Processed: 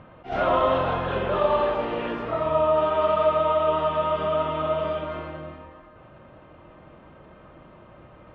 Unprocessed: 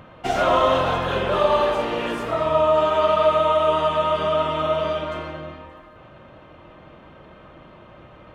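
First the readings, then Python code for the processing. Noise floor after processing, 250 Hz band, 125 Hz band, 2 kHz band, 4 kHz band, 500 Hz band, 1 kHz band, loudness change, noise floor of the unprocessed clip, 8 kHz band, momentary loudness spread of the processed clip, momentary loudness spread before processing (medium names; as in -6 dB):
-50 dBFS, -2.5 dB, -2.0 dB, -5.0 dB, -8.5 dB, -3.0 dB, -3.5 dB, -3.5 dB, -47 dBFS, no reading, 11 LU, 9 LU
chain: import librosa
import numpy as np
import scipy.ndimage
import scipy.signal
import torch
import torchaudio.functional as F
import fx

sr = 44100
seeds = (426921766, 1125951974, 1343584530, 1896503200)

y = fx.air_absorb(x, sr, metres=300.0)
y = fx.attack_slew(y, sr, db_per_s=210.0)
y = y * 10.0 ** (-2.0 / 20.0)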